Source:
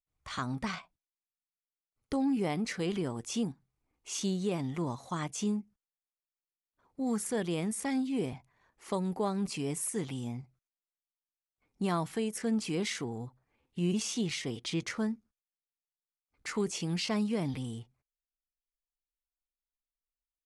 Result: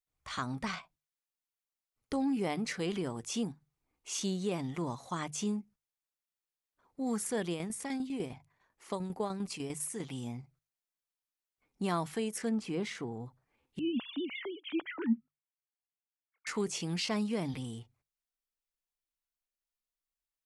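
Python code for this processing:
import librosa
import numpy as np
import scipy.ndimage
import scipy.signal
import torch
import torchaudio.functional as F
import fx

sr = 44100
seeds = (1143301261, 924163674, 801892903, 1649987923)

y = fx.tremolo_shape(x, sr, shape='saw_down', hz=10.0, depth_pct=60, at=(7.52, 10.12), fade=0.02)
y = fx.high_shelf(y, sr, hz=2800.0, db=-11.5, at=(12.49, 13.26))
y = fx.sine_speech(y, sr, at=(13.79, 16.47))
y = fx.low_shelf(y, sr, hz=390.0, db=-3.0)
y = fx.hum_notches(y, sr, base_hz=50, count=3)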